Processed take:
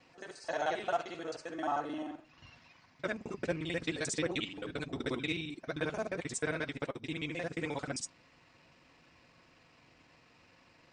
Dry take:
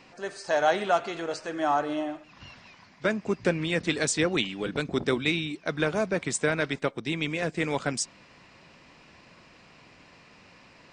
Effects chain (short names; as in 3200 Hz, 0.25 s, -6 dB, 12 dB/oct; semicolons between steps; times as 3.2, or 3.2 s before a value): local time reversal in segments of 44 ms; notch comb 200 Hz; gain -7.5 dB